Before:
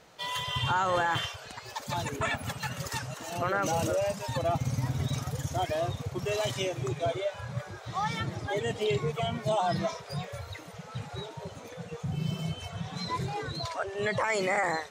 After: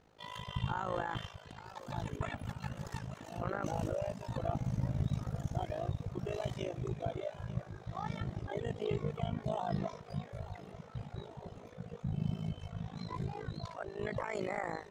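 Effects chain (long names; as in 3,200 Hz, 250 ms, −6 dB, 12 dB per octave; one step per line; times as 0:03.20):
spectral tilt −2.5 dB per octave
amplitude modulation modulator 53 Hz, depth 80%
feedback echo with a high-pass in the loop 890 ms, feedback 61%, high-pass 180 Hz, level −15.5 dB
level −7 dB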